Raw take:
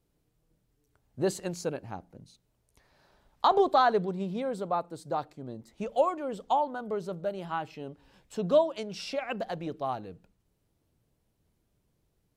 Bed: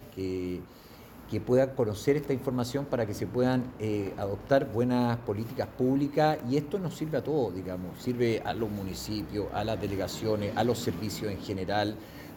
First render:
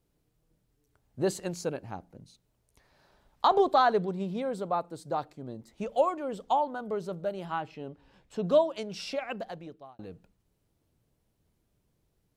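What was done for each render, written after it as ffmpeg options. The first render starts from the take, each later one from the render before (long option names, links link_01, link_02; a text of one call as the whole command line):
ffmpeg -i in.wav -filter_complex "[0:a]asettb=1/sr,asplit=3[link_01][link_02][link_03];[link_01]atrim=end=7.604[link_04];[link_02]atrim=start=7.6:end=8.44,asetpts=PTS-STARTPTS,afade=type=in:duration=0.004:curve=qsin,afade=type=out:start_time=0.836:duration=0.004:curve=qsin,lowpass=frequency=3700:poles=1[link_05];[link_03]atrim=start=8.436[link_06];[link_04][link_05]acrossfade=duration=0.004:curve1=hsin:curve2=qsin[link_07];[link_07][link_06]acrossfade=duration=0.004:curve1=qsin:curve2=hsin,asplit=2[link_08][link_09];[link_08]atrim=end=9.99,asetpts=PTS-STARTPTS,afade=type=out:start_time=9.13:duration=0.86[link_10];[link_09]atrim=start=9.99,asetpts=PTS-STARTPTS,afade=type=in:duration=0.004:curve=hsin[link_11];[link_10][link_11]concat=n=2:v=0:a=1" out.wav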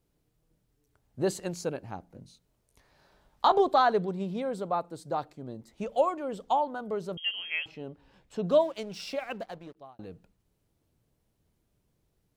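ffmpeg -i in.wav -filter_complex "[0:a]asettb=1/sr,asplit=3[link_01][link_02][link_03];[link_01]atrim=end=2.094[link_04];[link_02]atrim=start=2.09:end=3.52,asetpts=PTS-STARTPTS,afade=type=in:duration=0.004:curve=qsin,afade=type=out:start_time=1.426:duration=0.004:curve=qsin,asplit=2[link_05][link_06];[link_06]adelay=22,volume=-6dB[link_07];[link_05][link_07]amix=inputs=2:normalize=0,atrim=end_sample=63063[link_08];[link_03]atrim=start=3.516[link_09];[link_04][link_08]acrossfade=duration=0.004:curve1=hsin:curve2=qsin[link_10];[link_10][link_09]acrossfade=duration=0.004:curve1=qsin:curve2=hsin,asettb=1/sr,asplit=3[link_11][link_12][link_13];[link_11]atrim=end=7.174[link_14];[link_12]atrim=start=7.17:end=7.66,asetpts=PTS-STARTPTS,afade=type=in:duration=0.004:curve=qsin,afade=type=out:start_time=0.486:duration=0.004:curve=qsin,lowpass=frequency=2900:width_type=q:width=0.5098,lowpass=frequency=2900:width_type=q:width=0.6013,lowpass=frequency=2900:width_type=q:width=0.9,lowpass=frequency=2900:width_type=q:width=2.563,afreqshift=-3400[link_15];[link_13]atrim=start=7.656[link_16];[link_14][link_15]acrossfade=duration=0.004:curve1=hsin:curve2=qsin[link_17];[link_17][link_16]acrossfade=duration=0.004:curve1=qsin:curve2=hsin,asplit=3[link_18][link_19][link_20];[link_18]afade=type=out:start_time=8.59:duration=0.02[link_21];[link_19]aeval=exprs='sgn(val(0))*max(abs(val(0))-0.00188,0)':channel_layout=same,afade=type=in:start_time=8.59:duration=0.02,afade=type=out:start_time=9.75:duration=0.02[link_22];[link_20]afade=type=in:start_time=9.75:duration=0.02[link_23];[link_21][link_22][link_23]amix=inputs=3:normalize=0" out.wav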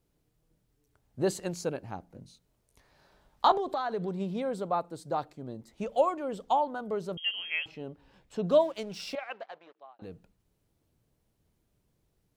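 ffmpeg -i in.wav -filter_complex "[0:a]asettb=1/sr,asplit=3[link_01][link_02][link_03];[link_01]atrim=end=3.554[link_04];[link_02]atrim=start=3.55:end=4.12,asetpts=PTS-STARTPTS,afade=type=in:duration=0.004:curve=qsin,afade=type=out:start_time=0.566:duration=0.004:curve=qsin,acompressor=threshold=-28dB:ratio=6:attack=3.2:release=140:knee=1:detection=peak[link_05];[link_03]atrim=start=4.116[link_06];[link_04][link_05]acrossfade=duration=0.004:curve1=hsin:curve2=qsin[link_07];[link_07][link_06]acrossfade=duration=0.004:curve1=qsin:curve2=hsin,asettb=1/sr,asplit=3[link_08][link_09][link_10];[link_08]atrim=end=9.154[link_11];[link_09]atrim=start=9.15:end=10.02,asetpts=PTS-STARTPTS,afade=type=in:duration=0.004:curve=qsin,afade=type=out:start_time=0.866:duration=0.004:curve=qsin,highpass=660,lowpass=3200[link_12];[link_10]atrim=start=10.016[link_13];[link_11][link_12]acrossfade=duration=0.004:curve1=hsin:curve2=qsin[link_14];[link_14][link_13]acrossfade=duration=0.004:curve1=qsin:curve2=hsin" out.wav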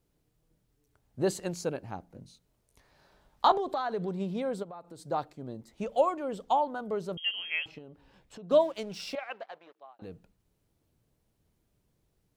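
ffmpeg -i in.wav -filter_complex "[0:a]asplit=3[link_01][link_02][link_03];[link_01]afade=type=out:start_time=4.62:duration=0.02[link_04];[link_02]acompressor=threshold=-42dB:ratio=6:attack=3.2:release=140:knee=1:detection=peak,afade=type=in:start_time=4.62:duration=0.02,afade=type=out:start_time=5.04:duration=0.02[link_05];[link_03]afade=type=in:start_time=5.04:duration=0.02[link_06];[link_04][link_05][link_06]amix=inputs=3:normalize=0,asettb=1/sr,asplit=3[link_07][link_08][link_09];[link_07]atrim=end=7.784[link_10];[link_08]atrim=start=7.78:end=8.51,asetpts=PTS-STARTPTS,afade=type=in:duration=0.004:curve=qsin,afade=type=out:start_time=0.726:duration=0.004:curve=qsin,acompressor=threshold=-44dB:ratio=5:attack=3.2:release=140:knee=1:detection=peak[link_11];[link_09]atrim=start=8.506[link_12];[link_10][link_11]acrossfade=duration=0.004:curve1=hsin:curve2=qsin[link_13];[link_13][link_12]acrossfade=duration=0.004:curve1=qsin:curve2=hsin" out.wav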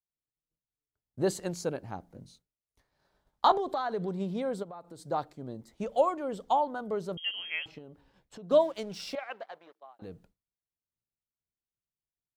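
ffmpeg -i in.wav -af "agate=range=-33dB:threshold=-55dB:ratio=3:detection=peak,equalizer=frequency=2600:width=5:gain=-4" out.wav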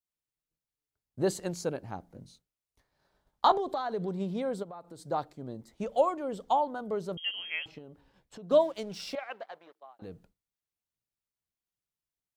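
ffmpeg -i in.wav -af "adynamicequalizer=threshold=0.00794:dfrequency=1500:dqfactor=0.95:tfrequency=1500:tqfactor=0.95:attack=5:release=100:ratio=0.375:range=2.5:mode=cutabove:tftype=bell" out.wav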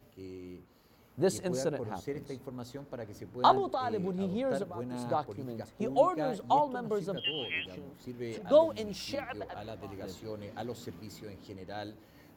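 ffmpeg -i in.wav -i bed.wav -filter_complex "[1:a]volume=-12.5dB[link_01];[0:a][link_01]amix=inputs=2:normalize=0" out.wav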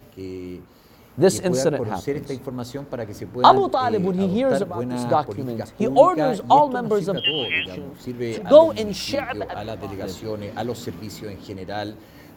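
ffmpeg -i in.wav -af "volume=12dB,alimiter=limit=-1dB:level=0:latency=1" out.wav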